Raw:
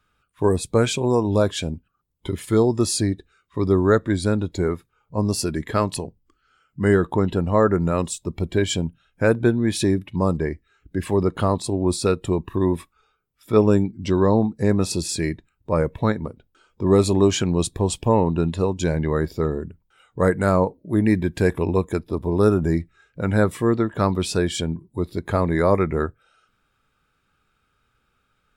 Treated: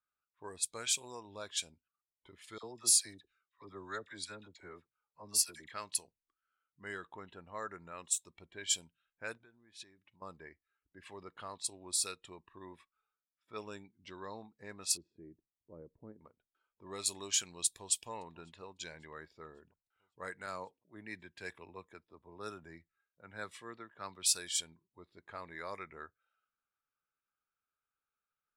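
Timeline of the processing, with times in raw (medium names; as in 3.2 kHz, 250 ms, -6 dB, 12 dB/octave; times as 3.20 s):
2.58–5.72 s: phase dispersion lows, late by 54 ms, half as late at 1.1 kHz
7.05–8.63 s: peaking EQ 4.8 kHz -7.5 dB 0.22 oct
9.37–10.22 s: compression 3:1, threshold -35 dBFS
14.97–16.21 s: resonant low-pass 340 Hz, resonance Q 1.6
17.66–18.08 s: echo throw 550 ms, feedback 60%, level -17 dB
20.46–24.33 s: three bands expanded up and down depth 40%
whole clip: pre-emphasis filter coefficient 0.97; level-controlled noise filter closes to 1 kHz, open at -28 dBFS; tilt shelf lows -3 dB; trim -4 dB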